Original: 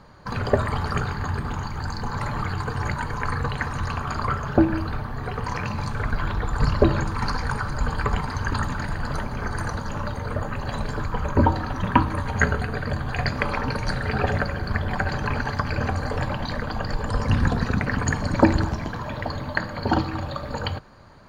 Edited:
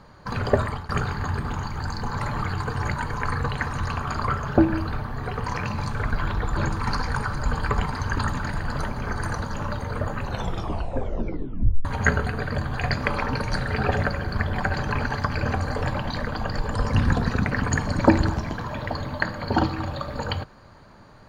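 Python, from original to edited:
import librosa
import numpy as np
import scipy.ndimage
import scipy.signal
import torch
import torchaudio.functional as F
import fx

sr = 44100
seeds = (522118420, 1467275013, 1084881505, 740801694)

y = fx.edit(x, sr, fx.fade_out_to(start_s=0.61, length_s=0.28, floor_db=-19.0),
    fx.cut(start_s=6.57, length_s=0.35),
    fx.tape_stop(start_s=10.57, length_s=1.63), tone=tone)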